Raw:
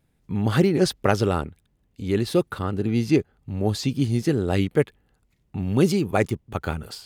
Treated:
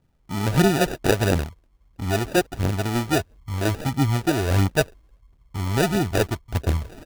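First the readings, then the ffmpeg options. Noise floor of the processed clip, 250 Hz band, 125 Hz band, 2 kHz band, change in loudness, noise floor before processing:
−61 dBFS, −1.5 dB, +2.0 dB, +4.5 dB, +0.5 dB, −68 dBFS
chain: -filter_complex "[0:a]asubboost=boost=5:cutoff=74,acrossover=split=4500[link_01][link_02];[link_02]adelay=50[link_03];[link_01][link_03]amix=inputs=2:normalize=0,acrusher=samples=41:mix=1:aa=0.000001,aphaser=in_gain=1:out_gain=1:delay=3.4:decay=0.37:speed=1.5:type=triangular"

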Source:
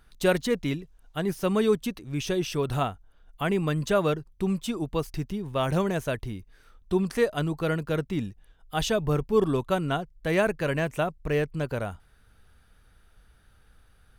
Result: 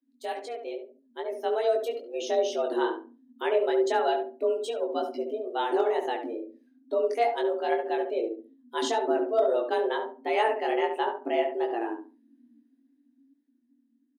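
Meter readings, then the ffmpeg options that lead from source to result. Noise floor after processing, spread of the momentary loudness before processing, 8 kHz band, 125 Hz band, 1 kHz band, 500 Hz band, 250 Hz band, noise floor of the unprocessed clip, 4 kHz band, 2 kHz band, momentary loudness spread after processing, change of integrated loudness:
−69 dBFS, 8 LU, −5.5 dB, below −40 dB, +4.5 dB, +1.5 dB, −6.5 dB, −60 dBFS, −2.5 dB, −3.0 dB, 12 LU, −0.5 dB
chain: -filter_complex "[0:a]afftdn=noise_reduction=20:noise_floor=-42,equalizer=frequency=1100:width_type=o:width=0.79:gain=-5,flanger=delay=18:depth=3.8:speed=2.3,dynaudnorm=framelen=140:gausssize=21:maxgain=10dB,afreqshift=230,lowshelf=frequency=180:width_type=q:width=1.5:gain=-13.5,asoftclip=type=hard:threshold=-5dB,asplit=2[link_01][link_02];[link_02]adelay=70,lowpass=frequency=1300:poles=1,volume=-5dB,asplit=2[link_03][link_04];[link_04]adelay=70,lowpass=frequency=1300:poles=1,volume=0.27,asplit=2[link_05][link_06];[link_06]adelay=70,lowpass=frequency=1300:poles=1,volume=0.27,asplit=2[link_07][link_08];[link_08]adelay=70,lowpass=frequency=1300:poles=1,volume=0.27[link_09];[link_03][link_05][link_07][link_09]amix=inputs=4:normalize=0[link_10];[link_01][link_10]amix=inputs=2:normalize=0,volume=-9dB"

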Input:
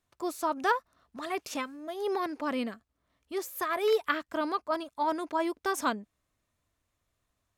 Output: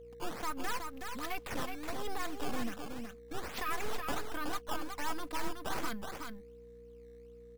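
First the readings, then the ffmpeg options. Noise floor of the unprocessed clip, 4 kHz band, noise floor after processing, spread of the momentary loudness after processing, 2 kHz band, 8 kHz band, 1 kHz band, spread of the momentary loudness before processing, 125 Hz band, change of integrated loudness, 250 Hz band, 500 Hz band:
−81 dBFS, −2.5 dB, −53 dBFS, 16 LU, −5.5 dB, −2.0 dB, −7.5 dB, 10 LU, can't be measured, −8.0 dB, −7.0 dB, −11.5 dB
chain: -filter_complex "[0:a]aeval=exprs='if(lt(val(0),0),0.251*val(0),val(0))':channel_layout=same,aecho=1:1:4:0.56,acrossover=split=210|1100[link_01][link_02][link_03];[link_02]acompressor=threshold=-46dB:ratio=6[link_04];[link_01][link_04][link_03]amix=inputs=3:normalize=0,alimiter=level_in=4dB:limit=-24dB:level=0:latency=1:release=39,volume=-4dB,aeval=exprs='val(0)+0.00112*(sin(2*PI*60*n/s)+sin(2*PI*2*60*n/s)/2+sin(2*PI*3*60*n/s)/3+sin(2*PI*4*60*n/s)/4+sin(2*PI*5*60*n/s)/5)':channel_layout=same,acrusher=samples=13:mix=1:aa=0.000001:lfo=1:lforange=20.8:lforate=1.3,aeval=exprs='val(0)+0.00282*sin(2*PI*470*n/s)':channel_layout=same,aecho=1:1:371:0.531,volume=2dB"

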